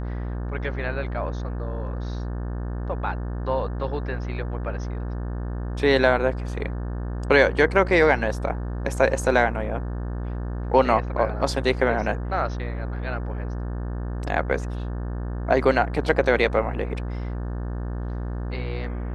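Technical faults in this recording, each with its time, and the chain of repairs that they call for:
buzz 60 Hz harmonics 30 -29 dBFS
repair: de-hum 60 Hz, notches 30

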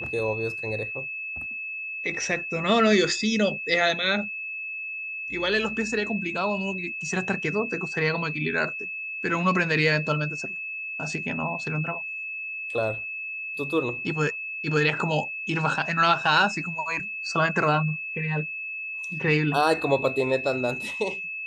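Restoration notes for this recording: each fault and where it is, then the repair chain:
whine 2.6 kHz -31 dBFS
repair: band-stop 2.6 kHz, Q 30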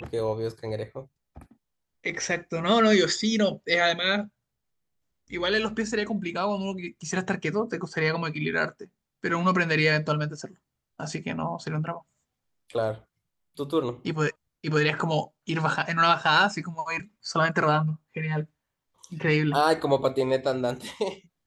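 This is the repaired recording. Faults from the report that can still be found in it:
nothing left

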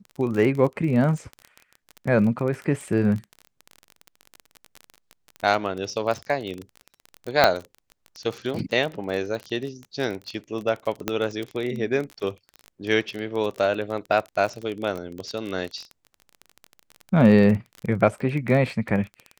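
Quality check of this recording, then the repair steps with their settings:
crackle 26 per s -28 dBFS
7.44 s: pop -2 dBFS
11.08 s: pop -8 dBFS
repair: de-click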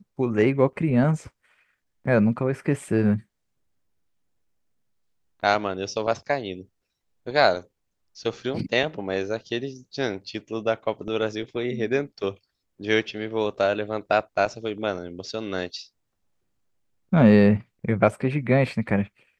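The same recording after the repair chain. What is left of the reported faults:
11.08 s: pop

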